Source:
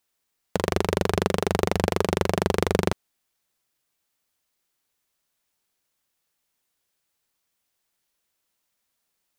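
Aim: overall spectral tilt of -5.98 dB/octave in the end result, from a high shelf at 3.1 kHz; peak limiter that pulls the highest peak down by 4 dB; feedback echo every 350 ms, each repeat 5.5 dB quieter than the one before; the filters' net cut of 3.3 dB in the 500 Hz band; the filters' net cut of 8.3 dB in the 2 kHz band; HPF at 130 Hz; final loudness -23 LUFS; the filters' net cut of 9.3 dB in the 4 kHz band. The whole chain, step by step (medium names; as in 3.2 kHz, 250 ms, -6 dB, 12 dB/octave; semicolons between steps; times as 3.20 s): high-pass 130 Hz; peaking EQ 500 Hz -3.5 dB; peaking EQ 2 kHz -7.5 dB; treble shelf 3.1 kHz -6.5 dB; peaking EQ 4 kHz -4.5 dB; peak limiter -12.5 dBFS; feedback delay 350 ms, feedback 53%, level -5.5 dB; trim +7 dB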